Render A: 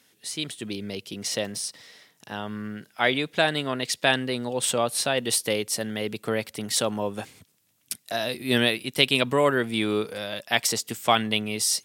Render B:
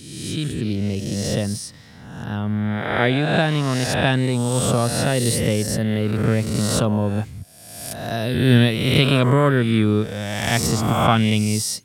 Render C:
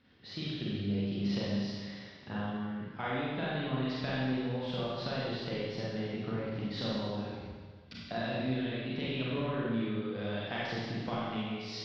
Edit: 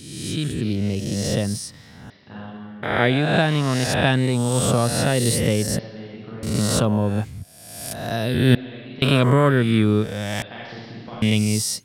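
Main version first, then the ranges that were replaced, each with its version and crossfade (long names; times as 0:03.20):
B
0:02.10–0:02.83: punch in from C
0:05.79–0:06.43: punch in from C
0:08.55–0:09.02: punch in from C
0:10.42–0:11.22: punch in from C
not used: A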